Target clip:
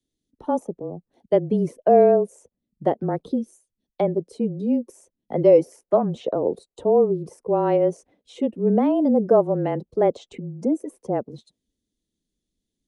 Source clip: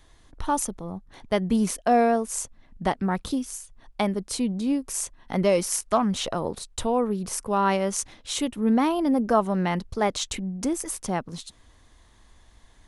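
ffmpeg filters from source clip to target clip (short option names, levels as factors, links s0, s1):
-filter_complex "[0:a]afftdn=nr=14:nf=-38,highpass=150,bass=f=250:g=-12,treble=f=4000:g=-1,afreqshift=-25,lowshelf=f=780:t=q:w=1.5:g=13,acrossover=split=290|2800[s0][s1][s2];[s1]agate=range=0.0224:threshold=0.00398:ratio=3:detection=peak[s3];[s2]acompressor=threshold=0.00398:ratio=5[s4];[s0][s3][s4]amix=inputs=3:normalize=0,volume=0.501"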